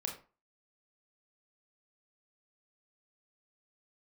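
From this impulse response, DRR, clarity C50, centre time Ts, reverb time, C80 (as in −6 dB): 1.0 dB, 7.5 dB, 22 ms, 0.35 s, 13.0 dB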